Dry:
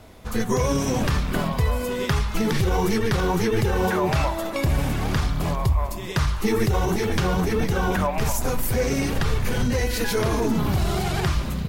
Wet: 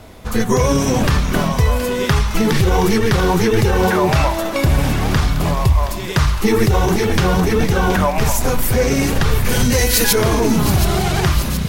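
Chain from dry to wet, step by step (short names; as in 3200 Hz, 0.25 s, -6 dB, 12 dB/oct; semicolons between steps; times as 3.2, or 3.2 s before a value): 9.49–10.13 high shelf 4700 Hz +12 dB; on a send: thin delay 0.722 s, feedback 67%, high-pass 2100 Hz, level -10 dB; on the sum: gain +7 dB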